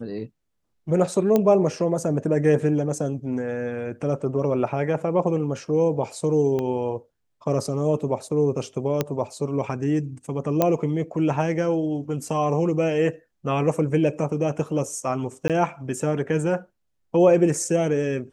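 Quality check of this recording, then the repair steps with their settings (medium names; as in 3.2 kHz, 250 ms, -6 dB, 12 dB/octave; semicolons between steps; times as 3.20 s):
1.36 s: pop -8 dBFS
6.59 s: pop -16 dBFS
9.01 s: pop -8 dBFS
10.62 s: pop -6 dBFS
15.48–15.50 s: dropout 17 ms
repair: de-click; interpolate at 15.48 s, 17 ms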